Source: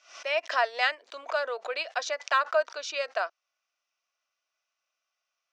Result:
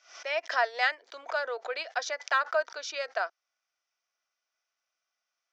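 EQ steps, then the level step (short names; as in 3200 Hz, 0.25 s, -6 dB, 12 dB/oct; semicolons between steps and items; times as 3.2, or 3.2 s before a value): speaker cabinet 320–6600 Hz, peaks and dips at 590 Hz -5 dB, 1100 Hz -6 dB, 2700 Hz -8 dB, 4000 Hz -4 dB; +1.5 dB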